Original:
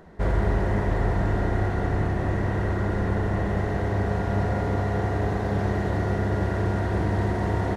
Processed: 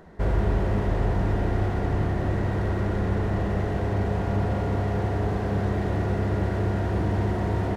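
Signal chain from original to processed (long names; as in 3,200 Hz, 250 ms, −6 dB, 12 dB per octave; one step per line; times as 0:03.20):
slew-rate limiting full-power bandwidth 27 Hz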